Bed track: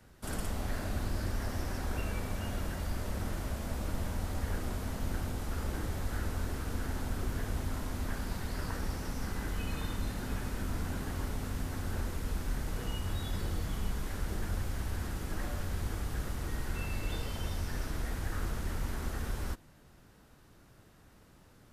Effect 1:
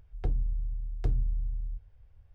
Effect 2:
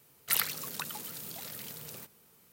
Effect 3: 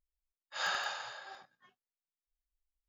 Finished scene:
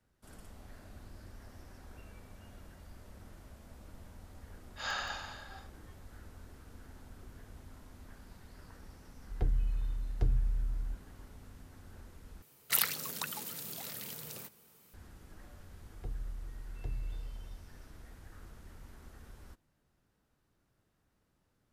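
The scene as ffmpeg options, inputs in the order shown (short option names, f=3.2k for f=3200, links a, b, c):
-filter_complex "[1:a]asplit=2[a][b];[0:a]volume=-17dB,asplit=2[c][d];[c]atrim=end=12.424[e];[2:a]atrim=end=2.52,asetpts=PTS-STARTPTS,volume=-0.5dB[f];[d]atrim=start=14.936[g];[3:a]atrim=end=2.88,asetpts=PTS-STARTPTS,volume=-2.5dB,afade=t=in:d=0.004:c=hsin,afade=t=out:st=2.876:d=0.004:c=hsin,adelay=4240[h];[a]atrim=end=2.34,asetpts=PTS-STARTPTS,volume=-1.5dB,afade=t=in:d=0.004:c=hsin,afade=t=out:st=2.336:d=0.004:c=hsin,adelay=9170[i];[b]atrim=end=2.34,asetpts=PTS-STARTPTS,volume=-11dB,afade=t=in:d=0.004:c=hsin,afade=t=out:st=2.336:d=0.004:c=hsin,adelay=15800[j];[e][f]acrossfade=d=0.004:c1=hsin:c2=hsin[k];[k][g]acrossfade=d=0.004:c1=hsin:c2=hsin[l];[l][h][i][j]amix=inputs=4:normalize=0"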